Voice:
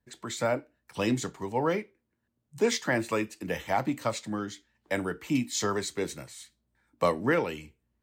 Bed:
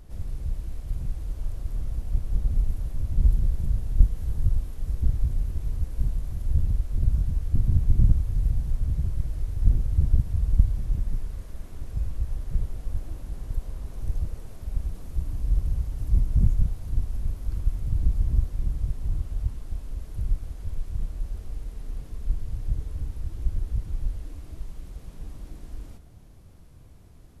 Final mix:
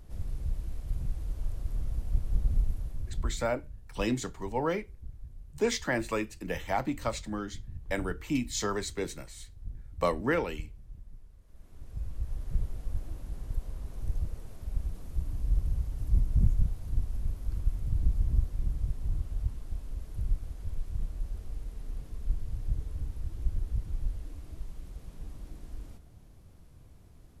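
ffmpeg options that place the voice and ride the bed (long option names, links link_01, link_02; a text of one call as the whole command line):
ffmpeg -i stem1.wav -i stem2.wav -filter_complex "[0:a]adelay=3000,volume=-2.5dB[link_01];[1:a]volume=14dB,afade=type=out:start_time=2.54:duration=0.94:silence=0.125893,afade=type=in:start_time=11.42:duration=1.09:silence=0.141254[link_02];[link_01][link_02]amix=inputs=2:normalize=0" out.wav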